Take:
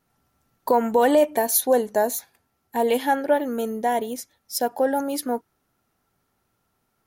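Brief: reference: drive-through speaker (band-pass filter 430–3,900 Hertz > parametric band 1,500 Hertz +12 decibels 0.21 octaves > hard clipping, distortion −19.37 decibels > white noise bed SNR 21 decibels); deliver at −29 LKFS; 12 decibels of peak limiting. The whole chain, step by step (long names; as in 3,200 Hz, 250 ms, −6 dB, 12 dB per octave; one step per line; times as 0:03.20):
brickwall limiter −19 dBFS
band-pass filter 430–3,900 Hz
parametric band 1,500 Hz +12 dB 0.21 octaves
hard clipping −22 dBFS
white noise bed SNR 21 dB
level +2.5 dB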